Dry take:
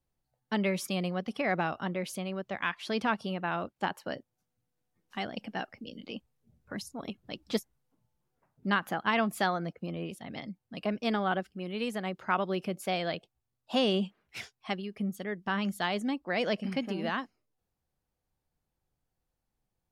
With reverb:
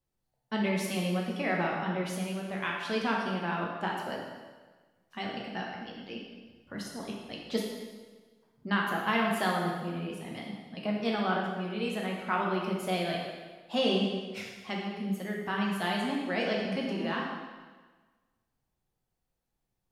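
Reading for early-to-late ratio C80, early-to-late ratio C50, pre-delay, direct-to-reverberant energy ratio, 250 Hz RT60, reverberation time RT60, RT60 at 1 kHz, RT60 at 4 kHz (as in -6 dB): 3.5 dB, 1.5 dB, 5 ms, -2.5 dB, 1.4 s, 1.4 s, 1.4 s, 1.3 s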